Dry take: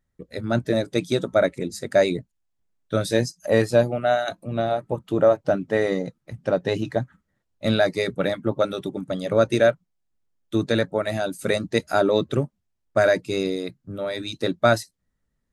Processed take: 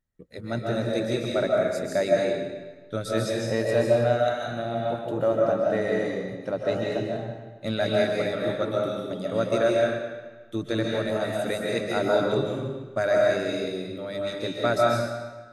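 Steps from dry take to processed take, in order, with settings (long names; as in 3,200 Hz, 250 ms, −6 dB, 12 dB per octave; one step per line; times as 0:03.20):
comb and all-pass reverb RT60 1.3 s, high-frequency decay 0.9×, pre-delay 105 ms, DRR −3 dB
level −7.5 dB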